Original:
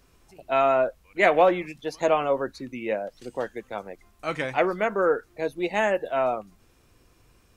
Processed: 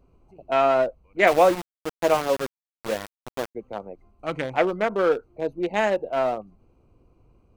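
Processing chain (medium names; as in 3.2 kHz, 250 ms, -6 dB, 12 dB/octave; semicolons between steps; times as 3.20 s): local Wiener filter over 25 samples; 1.27–3.55 s: small samples zeroed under -27.5 dBFS; trim +2 dB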